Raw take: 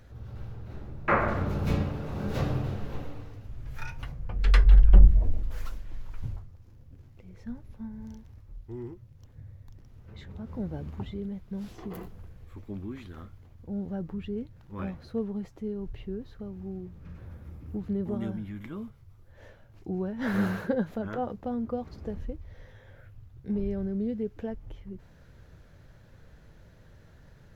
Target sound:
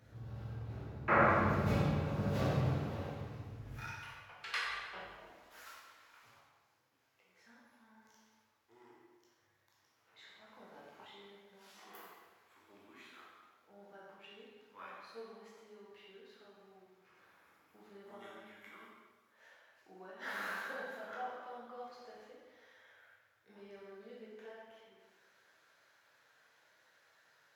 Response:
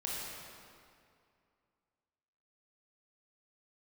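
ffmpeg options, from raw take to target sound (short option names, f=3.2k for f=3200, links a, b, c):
-filter_complex "[0:a]asetnsamples=n=441:p=0,asendcmd='3.84 highpass f 970',highpass=110[a];[1:a]atrim=start_sample=2205,asetrate=79380,aresample=44100[b];[a][b]afir=irnorm=-1:irlink=0"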